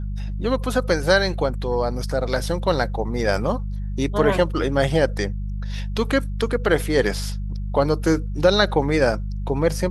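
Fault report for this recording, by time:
hum 50 Hz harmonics 4 -27 dBFS

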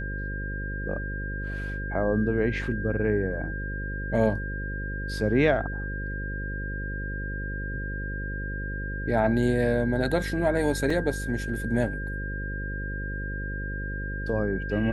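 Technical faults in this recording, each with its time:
buzz 50 Hz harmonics 11 -33 dBFS
whine 1.6 kHz -35 dBFS
10.90 s: dropout 3.7 ms

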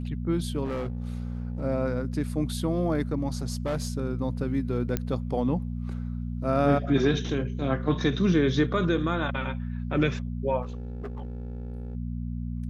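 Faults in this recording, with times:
hum 60 Hz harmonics 4 -32 dBFS
0.64–1.62 s: clipped -27 dBFS
3.50–3.97 s: clipped -24 dBFS
4.97 s: pop -12 dBFS
10.62–11.95 s: clipped -31.5 dBFS

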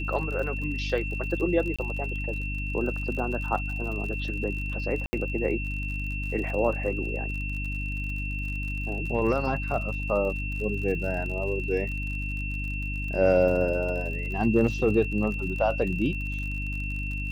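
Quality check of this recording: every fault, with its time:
crackle 51 per s -35 dBFS
hum 50 Hz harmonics 6 -32 dBFS
whine 2.7 kHz -34 dBFS
1.76–1.79 s: dropout 26 ms
5.06–5.13 s: dropout 70 ms

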